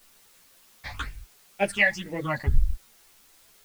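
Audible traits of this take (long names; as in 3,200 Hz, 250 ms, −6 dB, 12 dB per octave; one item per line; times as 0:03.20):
phaser sweep stages 8, 2 Hz, lowest notch 380–1,200 Hz
a quantiser's noise floor 10 bits, dither triangular
a shimmering, thickened sound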